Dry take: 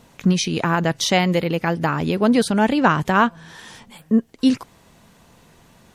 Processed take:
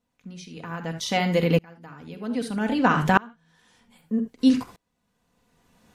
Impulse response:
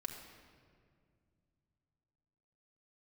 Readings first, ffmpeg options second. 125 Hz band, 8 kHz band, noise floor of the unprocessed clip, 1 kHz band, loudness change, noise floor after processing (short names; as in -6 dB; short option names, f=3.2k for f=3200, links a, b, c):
-5.5 dB, -11.0 dB, -53 dBFS, -6.0 dB, -4.5 dB, -76 dBFS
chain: -filter_complex "[1:a]atrim=start_sample=2205,atrim=end_sample=3969[a];[0:a][a]afir=irnorm=-1:irlink=0,aeval=exprs='val(0)*pow(10,-30*if(lt(mod(-0.63*n/s,1),2*abs(-0.63)/1000),1-mod(-0.63*n/s,1)/(2*abs(-0.63)/1000),(mod(-0.63*n/s,1)-2*abs(-0.63)/1000)/(1-2*abs(-0.63)/1000))/20)':c=same,volume=3.5dB"